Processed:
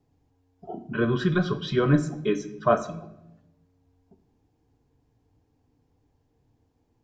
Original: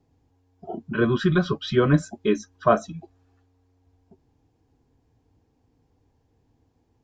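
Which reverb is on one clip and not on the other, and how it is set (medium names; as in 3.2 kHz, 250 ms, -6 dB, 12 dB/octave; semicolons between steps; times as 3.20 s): simulated room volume 290 m³, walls mixed, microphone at 0.37 m; trim -3 dB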